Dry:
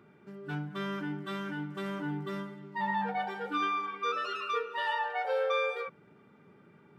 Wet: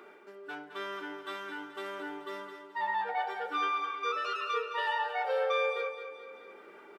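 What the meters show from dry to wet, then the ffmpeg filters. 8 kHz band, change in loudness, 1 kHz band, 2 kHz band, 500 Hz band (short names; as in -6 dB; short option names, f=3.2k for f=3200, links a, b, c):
n/a, 0.0 dB, +0.5 dB, +0.5 dB, +0.5 dB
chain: -af "highpass=f=370:w=0.5412,highpass=f=370:w=1.3066,aecho=1:1:214|428|642|856:0.355|0.138|0.054|0.021,areverse,acompressor=mode=upward:threshold=-41dB:ratio=2.5,areverse"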